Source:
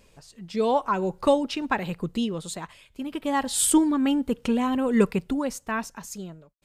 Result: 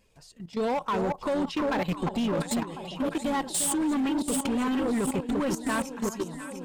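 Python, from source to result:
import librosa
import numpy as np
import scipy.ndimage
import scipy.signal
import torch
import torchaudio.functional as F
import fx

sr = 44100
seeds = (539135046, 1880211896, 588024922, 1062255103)

y = fx.spec_quant(x, sr, step_db=15)
y = fx.rider(y, sr, range_db=5, speed_s=2.0)
y = fx.echo_alternate(y, sr, ms=350, hz=1100.0, feedback_pct=80, wet_db=-7)
y = fx.level_steps(y, sr, step_db=14)
y = np.clip(y, -10.0 ** (-27.5 / 20.0), 10.0 ** (-27.5 / 20.0))
y = y * 10.0 ** (4.0 / 20.0)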